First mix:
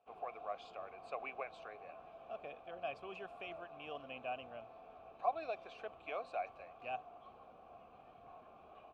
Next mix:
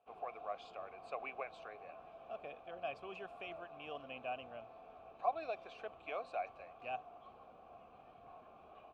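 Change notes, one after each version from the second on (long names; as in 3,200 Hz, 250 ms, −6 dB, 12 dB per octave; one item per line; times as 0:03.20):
nothing changed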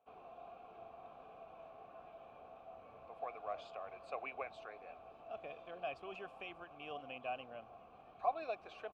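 speech: entry +3.00 s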